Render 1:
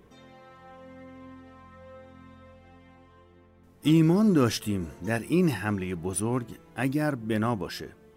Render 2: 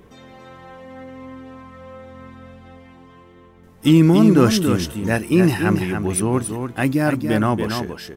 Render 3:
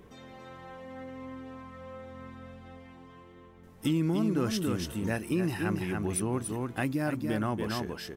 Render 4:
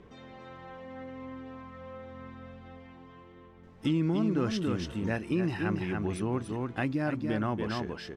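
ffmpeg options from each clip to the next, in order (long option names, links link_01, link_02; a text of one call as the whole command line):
ffmpeg -i in.wav -af "aecho=1:1:283:0.473,volume=8dB" out.wav
ffmpeg -i in.wav -af "acompressor=threshold=-24dB:ratio=2.5,volume=-5.5dB" out.wav
ffmpeg -i in.wav -af "lowpass=4600" out.wav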